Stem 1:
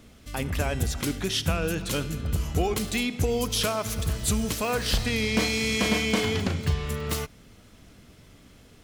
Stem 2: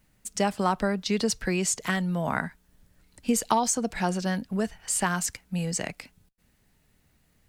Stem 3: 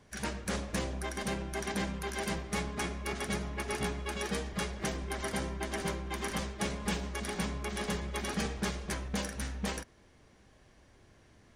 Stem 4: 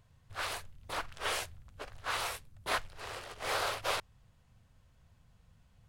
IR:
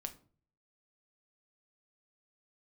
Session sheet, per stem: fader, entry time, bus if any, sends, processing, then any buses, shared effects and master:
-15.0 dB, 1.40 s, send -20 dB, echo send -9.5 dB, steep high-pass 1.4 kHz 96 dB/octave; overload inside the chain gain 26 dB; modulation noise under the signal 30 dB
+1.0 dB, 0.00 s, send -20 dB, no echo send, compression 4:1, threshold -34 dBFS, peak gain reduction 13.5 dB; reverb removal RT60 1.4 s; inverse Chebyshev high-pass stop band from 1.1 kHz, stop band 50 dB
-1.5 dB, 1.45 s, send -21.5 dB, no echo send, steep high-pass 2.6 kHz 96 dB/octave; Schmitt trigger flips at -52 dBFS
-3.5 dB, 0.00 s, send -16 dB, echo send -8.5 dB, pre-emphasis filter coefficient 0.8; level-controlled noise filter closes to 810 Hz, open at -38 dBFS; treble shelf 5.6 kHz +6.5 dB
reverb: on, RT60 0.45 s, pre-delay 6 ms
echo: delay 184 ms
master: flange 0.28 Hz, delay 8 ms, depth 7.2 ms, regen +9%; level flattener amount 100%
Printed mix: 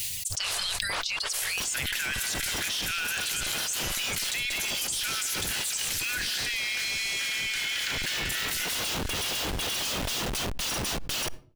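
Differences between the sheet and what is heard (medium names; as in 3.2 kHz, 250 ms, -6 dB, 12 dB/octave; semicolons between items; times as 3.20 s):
stem 1 -15.0 dB -> -4.0 dB; stem 4 -3.5 dB -> -13.0 dB; master: missing flange 0.28 Hz, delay 8 ms, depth 7.2 ms, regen +9%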